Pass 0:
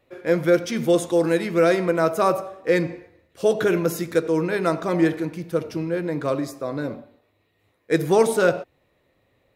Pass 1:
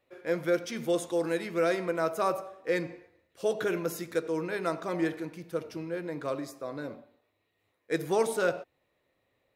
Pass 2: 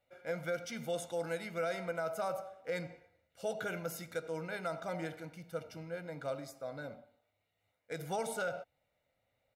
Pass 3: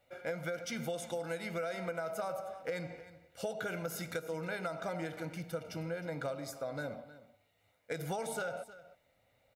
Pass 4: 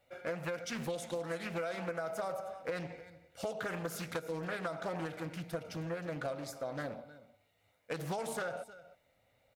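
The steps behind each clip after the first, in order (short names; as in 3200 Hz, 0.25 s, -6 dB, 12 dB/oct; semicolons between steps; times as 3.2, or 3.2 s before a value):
low shelf 270 Hz -7 dB; gain -7.5 dB
comb 1.4 ms, depth 71%; limiter -20.5 dBFS, peak gain reduction 7 dB; gain -6.5 dB
compressor, threshold -43 dBFS, peak gain reduction 11.5 dB; echo 0.312 s -16.5 dB; gain +8 dB
Doppler distortion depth 0.46 ms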